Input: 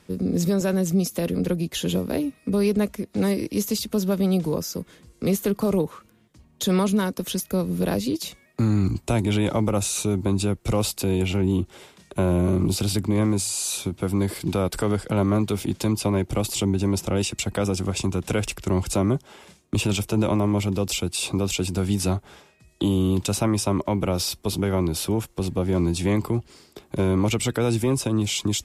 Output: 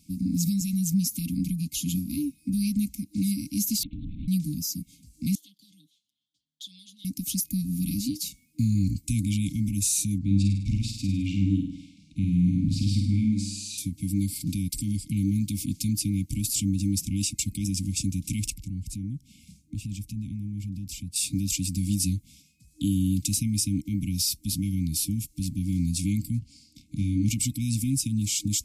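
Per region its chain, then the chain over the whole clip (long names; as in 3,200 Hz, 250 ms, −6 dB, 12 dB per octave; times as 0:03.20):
0:03.83–0:04.28: linear-prediction vocoder at 8 kHz whisper + downward compressor, threshold −28 dBFS
0:05.35–0:07.05: pair of resonant band-passes 2,300 Hz, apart 1.1 octaves + comb filter 6.6 ms, depth 58%
0:10.18–0:13.78: low-pass filter 3,500 Hz + flutter between parallel walls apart 8.7 metres, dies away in 0.69 s
0:18.50–0:21.16: bass and treble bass +8 dB, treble −5 dB + downward compressor 2 to 1, threshold −38 dBFS
0:26.39–0:27.29: high-frequency loss of the air 56 metres + double-tracking delay 29 ms −6 dB
whole clip: high-shelf EQ 6,100 Hz +7.5 dB; brick-wall band-stop 310–2,100 Hz; flat-topped bell 2,200 Hz −8 dB; level −2.5 dB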